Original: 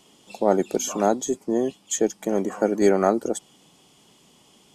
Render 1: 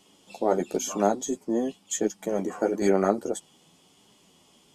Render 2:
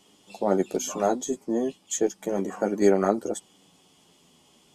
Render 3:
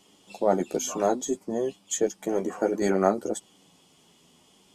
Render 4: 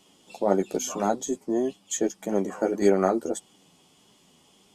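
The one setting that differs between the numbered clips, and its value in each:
flanger, speed: 0.97, 0.32, 0.6, 1.7 Hertz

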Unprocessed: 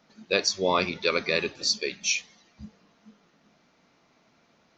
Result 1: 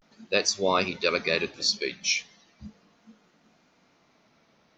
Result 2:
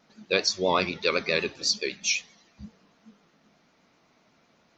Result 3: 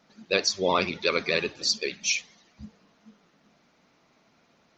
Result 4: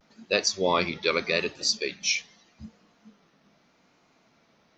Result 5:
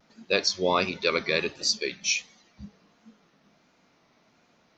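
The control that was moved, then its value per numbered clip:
pitch vibrato, speed: 0.37, 7.9, 16, 0.81, 1.4 Hertz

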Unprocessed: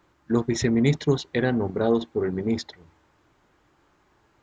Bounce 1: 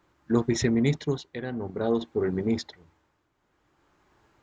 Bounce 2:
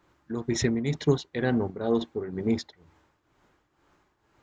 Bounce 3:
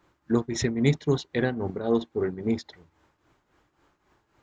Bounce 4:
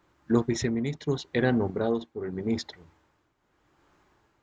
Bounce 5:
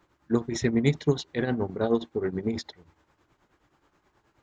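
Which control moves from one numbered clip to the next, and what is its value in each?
shaped tremolo, speed: 0.53, 2.1, 3.7, 0.82, 9.4 Hertz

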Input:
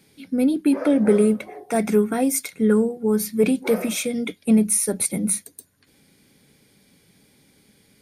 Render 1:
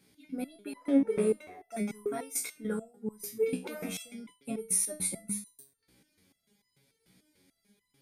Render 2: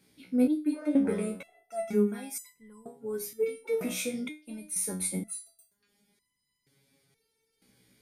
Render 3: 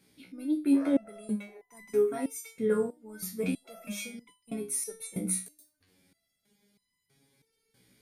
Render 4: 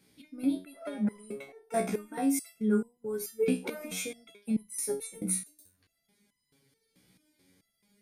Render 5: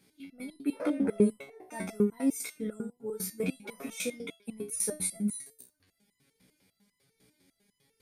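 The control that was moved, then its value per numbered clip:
step-sequenced resonator, speed: 6.8, 2.1, 3.1, 4.6, 10 Hertz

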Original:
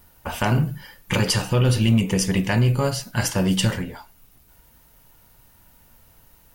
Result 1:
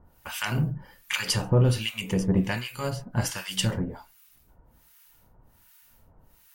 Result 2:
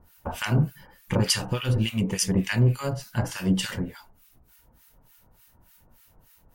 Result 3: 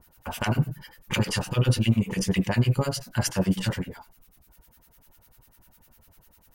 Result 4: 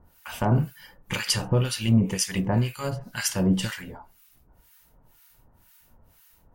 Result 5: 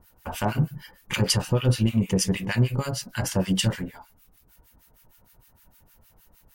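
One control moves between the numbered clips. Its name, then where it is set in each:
two-band tremolo in antiphase, speed: 1.3, 3.4, 10, 2, 6.5 Hertz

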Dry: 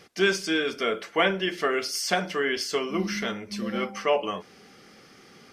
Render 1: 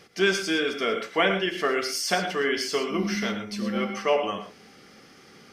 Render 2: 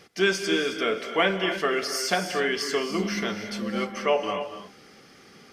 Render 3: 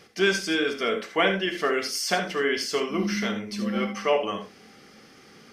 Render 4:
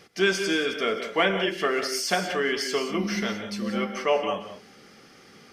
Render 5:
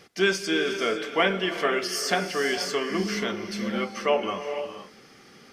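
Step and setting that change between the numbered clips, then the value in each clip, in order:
reverb whose tail is shaped and stops, gate: 140, 320, 100, 210, 520 milliseconds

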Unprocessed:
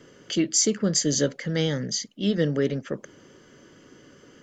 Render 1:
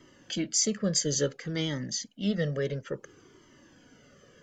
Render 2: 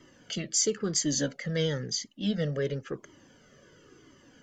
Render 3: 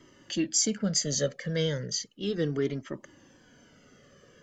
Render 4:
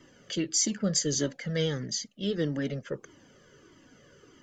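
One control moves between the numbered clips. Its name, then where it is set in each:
flanger whose copies keep moving one way, speed: 0.58, 0.97, 0.35, 1.6 Hertz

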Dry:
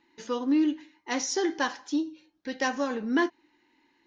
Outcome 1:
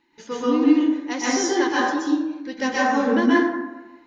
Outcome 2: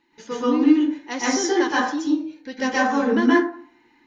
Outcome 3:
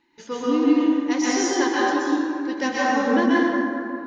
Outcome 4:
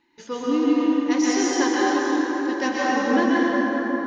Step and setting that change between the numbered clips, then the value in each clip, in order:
dense smooth reverb, RT60: 1.1, 0.5, 2.6, 5.3 seconds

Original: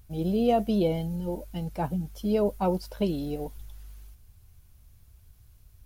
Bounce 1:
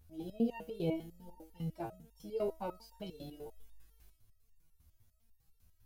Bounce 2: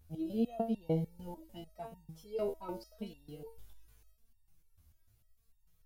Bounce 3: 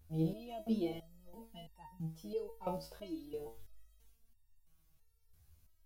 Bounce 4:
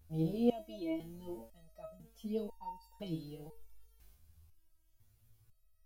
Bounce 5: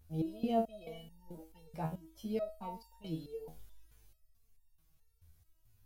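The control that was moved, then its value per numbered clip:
step-sequenced resonator, speed: 10, 6.7, 3, 2, 4.6 Hertz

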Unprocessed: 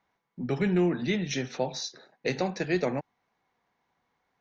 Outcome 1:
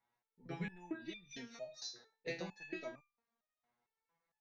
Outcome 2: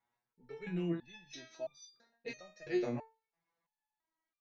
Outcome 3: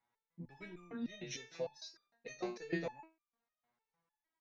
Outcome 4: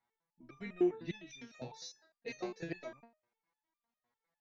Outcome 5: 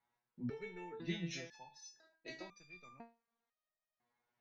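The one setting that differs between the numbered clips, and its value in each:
step-sequenced resonator, speed: 4.4, 3, 6.6, 9.9, 2 Hertz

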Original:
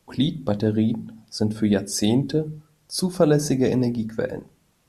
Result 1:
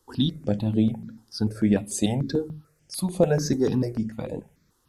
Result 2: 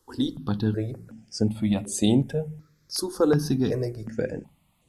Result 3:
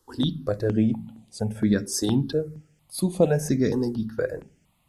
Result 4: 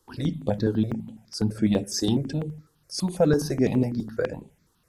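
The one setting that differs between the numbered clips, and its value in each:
step-sequenced phaser, speed: 6.8, 2.7, 4.3, 12 Hertz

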